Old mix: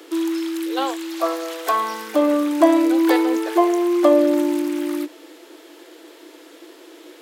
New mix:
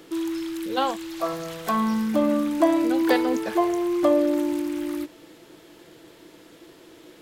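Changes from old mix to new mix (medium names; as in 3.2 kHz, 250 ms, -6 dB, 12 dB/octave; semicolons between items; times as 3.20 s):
background -5.5 dB; master: remove steep high-pass 280 Hz 72 dB/octave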